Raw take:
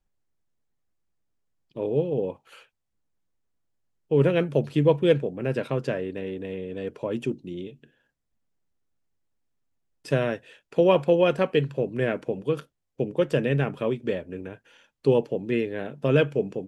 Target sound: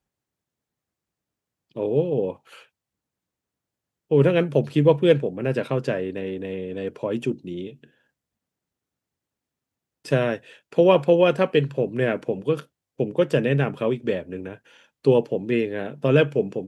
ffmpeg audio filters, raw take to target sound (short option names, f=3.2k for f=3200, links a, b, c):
-af "highpass=80,volume=3dB"